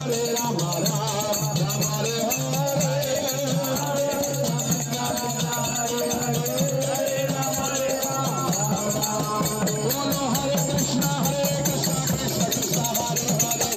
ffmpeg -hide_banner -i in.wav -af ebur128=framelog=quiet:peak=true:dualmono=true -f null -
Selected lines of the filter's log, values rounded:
Integrated loudness:
  I:         -20.4 LUFS
  Threshold: -30.4 LUFS
Loudness range:
  LRA:         1.3 LU
  Threshold: -40.5 LUFS
  LRA low:   -21.0 LUFS
  LRA high:  -19.7 LUFS
True peak:
  Peak:      -10.3 dBFS